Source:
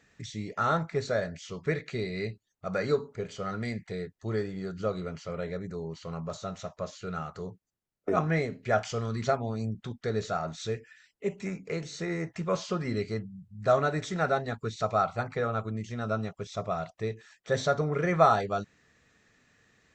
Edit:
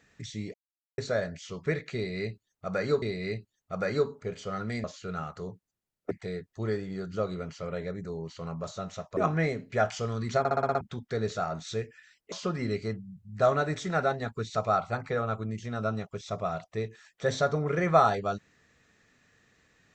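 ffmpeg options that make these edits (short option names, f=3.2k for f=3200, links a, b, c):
-filter_complex "[0:a]asplit=15[a][b][c][d][e][f][g][h][i][j][k][l][m][n][o];[a]atrim=end=0.54,asetpts=PTS-STARTPTS,afade=t=out:st=0.536:d=0.004:c=hsin[p];[b]atrim=start=0.54:end=0.98,asetpts=PTS-STARTPTS,volume=0[q];[c]atrim=start=0.98:end=3.022,asetpts=PTS-STARTPTS,afade=t=in:d=0.004:c=hsin[r];[d]atrim=start=1.948:end=3.772[s];[e]atrim=start=6.828:end=8.102[t];[f]atrim=start=3.768:end=6.832[u];[g]atrim=start=8.098:end=9.382[v];[h]atrim=start=9.318:end=9.382[w];[i]atrim=start=9.318:end=9.382[x];[j]atrim=start=9.318:end=9.382[y];[k]atrim=start=9.318:end=9.382[z];[l]atrim=start=9.318:end=9.382[aa];[m]atrim=start=9.318:end=9.382[ab];[n]atrim=start=9.738:end=11.252[ac];[o]atrim=start=12.578[ad];[p][q][r]concat=n=3:v=0:a=1[ae];[ae][s]acrossfade=d=0.004:c1=hsin:c2=hsin[af];[af][t]acrossfade=d=0.004:c1=hsin:c2=hsin[ag];[ag][u]acrossfade=d=0.004:c1=hsin:c2=hsin[ah];[ah][v]acrossfade=d=0.004:c1=hsin:c2=hsin[ai];[ai][w]acrossfade=d=0.004:c1=hsin:c2=hsin[aj];[aj][x]acrossfade=d=0.004:c1=hsin:c2=hsin[ak];[ak][y]acrossfade=d=0.004:c1=hsin:c2=hsin[al];[al][z]acrossfade=d=0.004:c1=hsin:c2=hsin[am];[am][aa]acrossfade=d=0.004:c1=hsin:c2=hsin[an];[an][ab]acrossfade=d=0.004:c1=hsin:c2=hsin[ao];[ao][ac]acrossfade=d=0.004:c1=hsin:c2=hsin[ap];[ap][ad]acrossfade=d=0.004:c1=hsin:c2=hsin"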